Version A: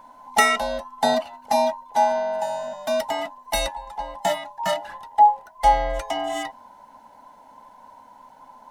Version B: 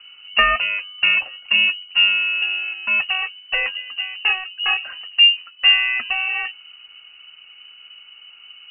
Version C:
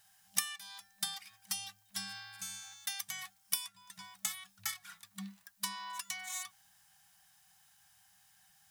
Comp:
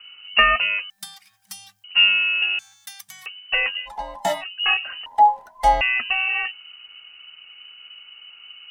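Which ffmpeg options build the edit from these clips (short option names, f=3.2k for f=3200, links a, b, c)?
-filter_complex "[2:a]asplit=2[a][b];[0:a]asplit=2[c][d];[1:a]asplit=5[e][f][g][h][i];[e]atrim=end=0.902[j];[a]atrim=start=0.898:end=1.842[k];[f]atrim=start=1.838:end=2.592[l];[b]atrim=start=2.588:end=3.262[m];[g]atrim=start=3.258:end=3.89[n];[c]atrim=start=3.85:end=4.44[o];[h]atrim=start=4.4:end=5.062[p];[d]atrim=start=5.058:end=5.812[q];[i]atrim=start=5.808[r];[j][k]acrossfade=d=0.004:c1=hsin:c2=hsin[s];[s][l]acrossfade=d=0.004:c1=hsin:c2=hsin[t];[t][m]acrossfade=d=0.004:c1=hsin:c2=hsin[u];[u][n]acrossfade=d=0.004:c1=hsin:c2=hsin[v];[v][o]acrossfade=d=0.04:c1=tri:c2=tri[w];[w][p]acrossfade=d=0.04:c1=tri:c2=tri[x];[x][q]acrossfade=d=0.004:c1=hsin:c2=hsin[y];[y][r]acrossfade=d=0.004:c1=hsin:c2=hsin"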